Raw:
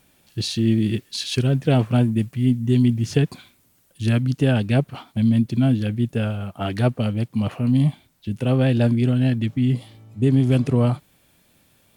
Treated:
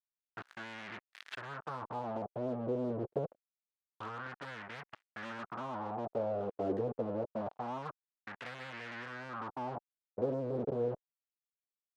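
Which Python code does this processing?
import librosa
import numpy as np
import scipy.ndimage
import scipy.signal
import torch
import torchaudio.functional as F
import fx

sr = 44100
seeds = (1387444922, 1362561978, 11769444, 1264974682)

p1 = scipy.ndimage.median_filter(x, 9, mode='constant')
p2 = fx.env_lowpass_down(p1, sr, base_hz=320.0, full_db=-15.5)
p3 = fx.level_steps(p2, sr, step_db=16)
p4 = p2 + (p3 * 10.0 ** (2.5 / 20.0))
p5 = fx.fuzz(p4, sr, gain_db=25.0, gate_db=-30.0)
p6 = fx.cheby_harmonics(p5, sr, harmonics=(7, 8), levels_db=(-14, -31), full_scale_db=-10.0)
p7 = fx.dynamic_eq(p6, sr, hz=2000.0, q=1.6, threshold_db=-42.0, ratio=4.0, max_db=-7)
p8 = fx.wah_lfo(p7, sr, hz=0.26, low_hz=440.0, high_hz=2000.0, q=3.4)
y = p8 * 10.0 ** (-7.0 / 20.0)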